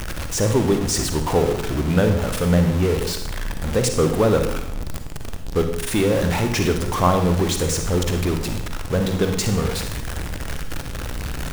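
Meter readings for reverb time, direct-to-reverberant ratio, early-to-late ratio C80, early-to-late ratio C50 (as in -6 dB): 0.75 s, 5.5 dB, 9.5 dB, 7.0 dB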